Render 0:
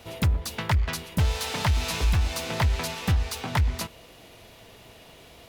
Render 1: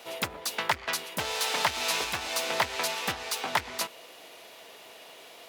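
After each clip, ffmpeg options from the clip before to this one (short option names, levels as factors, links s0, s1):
-af "highpass=450,volume=1.33"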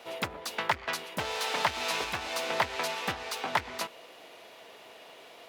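-af "highshelf=f=4500:g=-9.5"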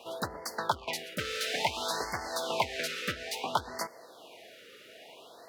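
-af "afftfilt=real='re*(1-between(b*sr/1024,830*pow(3100/830,0.5+0.5*sin(2*PI*0.58*pts/sr))/1.41,830*pow(3100/830,0.5+0.5*sin(2*PI*0.58*pts/sr))*1.41))':imag='im*(1-between(b*sr/1024,830*pow(3100/830,0.5+0.5*sin(2*PI*0.58*pts/sr))/1.41,830*pow(3100/830,0.5+0.5*sin(2*PI*0.58*pts/sr))*1.41))':win_size=1024:overlap=0.75"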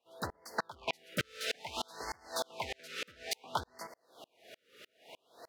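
-af "aeval=exprs='val(0)*pow(10,-36*if(lt(mod(-3.3*n/s,1),2*abs(-3.3)/1000),1-mod(-3.3*n/s,1)/(2*abs(-3.3)/1000),(mod(-3.3*n/s,1)-2*abs(-3.3)/1000)/(1-2*abs(-3.3)/1000))/20)':c=same,volume=1.5"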